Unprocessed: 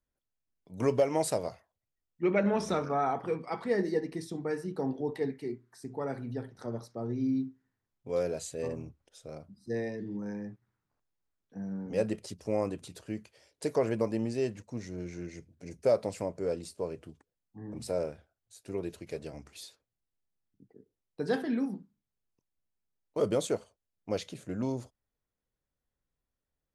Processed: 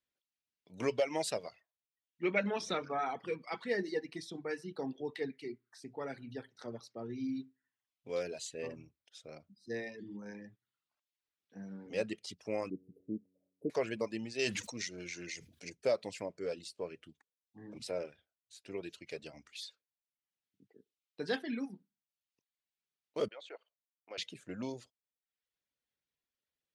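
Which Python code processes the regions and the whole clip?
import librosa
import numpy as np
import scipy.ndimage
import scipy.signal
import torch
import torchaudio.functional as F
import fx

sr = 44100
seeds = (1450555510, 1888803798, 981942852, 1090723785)

y = fx.chain(x, sr, fx.cheby2_bandstop(low_hz=1500.0, high_hz=7000.0, order=4, stop_db=60),
    fx.peak_eq(hz=230.0, db=14.0, octaves=2.1),
    fx.comb_fb(f0_hz=93.0, decay_s=1.5, harmonics='all', damping=0.0, mix_pct=60), at=(12.7, 13.7))
y = fx.chain(y, sr, fx.high_shelf(hz=2100.0, db=11.5),
    fx.sustainer(db_per_s=51.0), at=(14.39, 15.7))
y = fx.chain(y, sr, fx.level_steps(step_db=11),
    fx.bandpass_edges(low_hz=640.0, high_hz=2400.0), at=(23.28, 24.18))
y = fx.weighting(y, sr, curve='D')
y = fx.dereverb_blind(y, sr, rt60_s=0.71)
y = fx.high_shelf(y, sr, hz=6400.0, db=-8.5)
y = y * 10.0 ** (-5.0 / 20.0)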